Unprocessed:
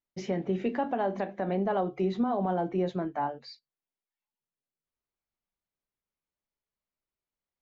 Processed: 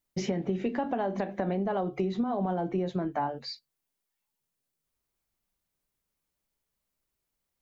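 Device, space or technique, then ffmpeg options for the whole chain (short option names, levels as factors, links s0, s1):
ASMR close-microphone chain: -af "lowshelf=f=220:g=5.5,acompressor=threshold=0.0251:ratio=6,highshelf=f=6100:g=7,volume=1.88"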